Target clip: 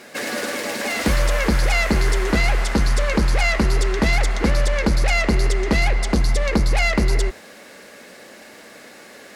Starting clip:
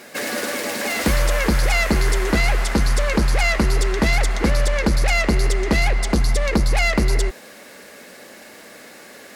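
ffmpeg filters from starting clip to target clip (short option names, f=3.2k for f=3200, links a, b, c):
-af "highshelf=f=12k:g=-9.5,bandreject=f=84.59:t=h:w=4,bandreject=f=169.18:t=h:w=4,bandreject=f=253.77:t=h:w=4,bandreject=f=338.36:t=h:w=4,bandreject=f=422.95:t=h:w=4,bandreject=f=507.54:t=h:w=4,bandreject=f=592.13:t=h:w=4,bandreject=f=676.72:t=h:w=4,bandreject=f=761.31:t=h:w=4,bandreject=f=845.9:t=h:w=4,bandreject=f=930.49:t=h:w=4,bandreject=f=1.01508k:t=h:w=4,bandreject=f=1.09967k:t=h:w=4,bandreject=f=1.18426k:t=h:w=4,bandreject=f=1.26885k:t=h:w=4,bandreject=f=1.35344k:t=h:w=4,bandreject=f=1.43803k:t=h:w=4,bandreject=f=1.52262k:t=h:w=4,bandreject=f=1.60721k:t=h:w=4,bandreject=f=1.6918k:t=h:w=4,bandreject=f=1.77639k:t=h:w=4,bandreject=f=1.86098k:t=h:w=4,bandreject=f=1.94557k:t=h:w=4,bandreject=f=2.03016k:t=h:w=4,bandreject=f=2.11475k:t=h:w=4,bandreject=f=2.19934k:t=h:w=4,bandreject=f=2.28393k:t=h:w=4,bandreject=f=2.36852k:t=h:w=4,bandreject=f=2.45311k:t=h:w=4"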